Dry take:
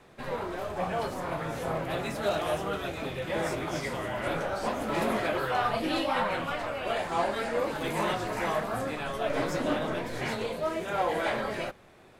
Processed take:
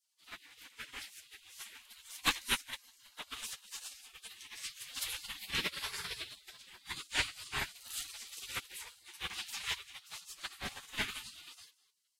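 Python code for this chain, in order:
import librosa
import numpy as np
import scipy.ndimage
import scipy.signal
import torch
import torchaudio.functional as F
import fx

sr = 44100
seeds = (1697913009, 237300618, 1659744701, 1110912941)

p1 = x + fx.echo_single(x, sr, ms=199, db=-12.5, dry=0)
p2 = fx.spec_gate(p1, sr, threshold_db=-25, keep='weak')
p3 = fx.upward_expand(p2, sr, threshold_db=-55.0, expansion=2.5)
y = p3 * librosa.db_to_amplitude(14.5)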